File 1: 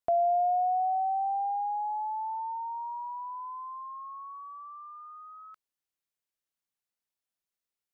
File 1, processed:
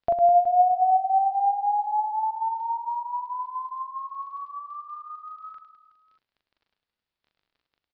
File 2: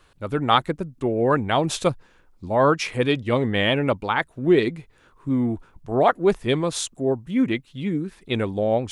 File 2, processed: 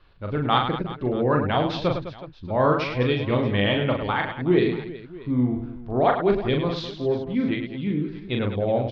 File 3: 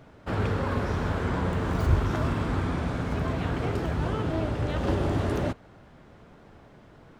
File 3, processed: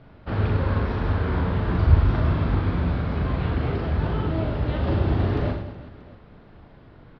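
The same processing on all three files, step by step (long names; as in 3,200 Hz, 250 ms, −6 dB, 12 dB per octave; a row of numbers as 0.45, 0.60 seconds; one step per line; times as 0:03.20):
low-shelf EQ 120 Hz +8 dB
surface crackle 12 per second −53 dBFS
Butterworth low-pass 4,800 Hz 48 dB per octave
on a send: reverse bouncing-ball delay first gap 40 ms, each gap 1.6×, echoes 5
on the sum: loudness normalisation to −24 LKFS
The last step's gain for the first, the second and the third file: +4.5, −4.5, −1.5 decibels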